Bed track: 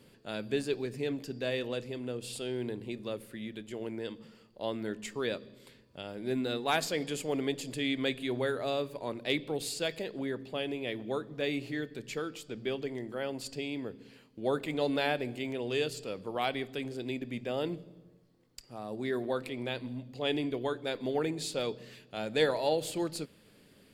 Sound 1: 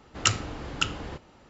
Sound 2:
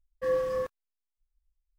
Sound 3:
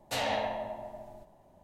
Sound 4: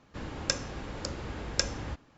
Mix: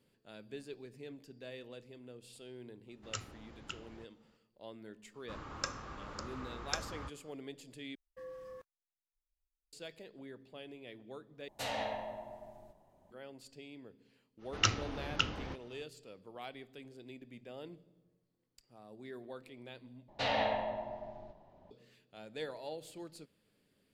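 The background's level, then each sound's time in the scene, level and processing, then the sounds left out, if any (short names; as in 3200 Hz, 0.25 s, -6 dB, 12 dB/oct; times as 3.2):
bed track -14.5 dB
2.88 add 1 -18 dB
5.14 add 4 -10 dB + bell 1200 Hz +13.5 dB 0.57 oct
7.95 replace with 2 -14.5 dB + compressor 2:1, threshold -35 dBFS
11.48 replace with 3 -6.5 dB
14.38 add 1 -4.5 dB, fades 0.05 s + elliptic low-pass 6200 Hz
20.08 replace with 3 -1 dB + LPF 4700 Hz 24 dB/oct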